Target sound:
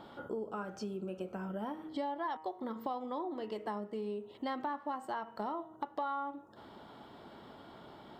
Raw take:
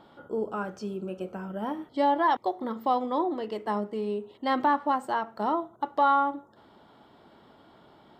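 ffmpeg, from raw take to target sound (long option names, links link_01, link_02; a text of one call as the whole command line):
ffmpeg -i in.wav -af "bandreject=frequency=157.1:width_type=h:width=4,bandreject=frequency=314.2:width_type=h:width=4,bandreject=frequency=471.3:width_type=h:width=4,bandreject=frequency=628.4:width_type=h:width=4,bandreject=frequency=785.5:width_type=h:width=4,bandreject=frequency=942.6:width_type=h:width=4,bandreject=frequency=1099.7:width_type=h:width=4,bandreject=frequency=1256.8:width_type=h:width=4,bandreject=frequency=1413.9:width_type=h:width=4,bandreject=frequency=1571:width_type=h:width=4,bandreject=frequency=1728.1:width_type=h:width=4,bandreject=frequency=1885.2:width_type=h:width=4,bandreject=frequency=2042.3:width_type=h:width=4,bandreject=frequency=2199.4:width_type=h:width=4,bandreject=frequency=2356.5:width_type=h:width=4,bandreject=frequency=2513.6:width_type=h:width=4,bandreject=frequency=2670.7:width_type=h:width=4,bandreject=frequency=2827.8:width_type=h:width=4,bandreject=frequency=2984.9:width_type=h:width=4,acompressor=threshold=-41dB:ratio=4,volume=3dB" out.wav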